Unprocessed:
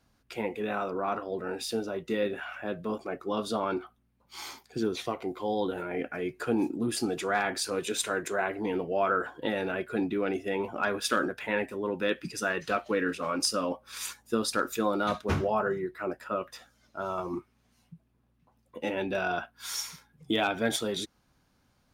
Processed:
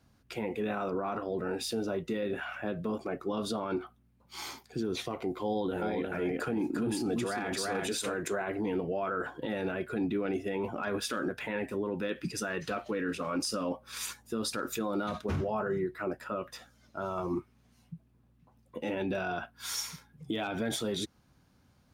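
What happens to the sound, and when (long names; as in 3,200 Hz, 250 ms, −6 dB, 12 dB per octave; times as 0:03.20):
0:05.47–0:08.14: single-tap delay 346 ms −4.5 dB
whole clip: high-pass filter 58 Hz; low-shelf EQ 260 Hz +7.5 dB; brickwall limiter −24 dBFS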